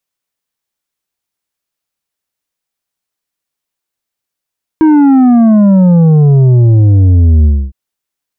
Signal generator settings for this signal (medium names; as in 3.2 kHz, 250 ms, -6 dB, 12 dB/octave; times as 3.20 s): sub drop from 320 Hz, over 2.91 s, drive 7 dB, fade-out 0.27 s, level -4 dB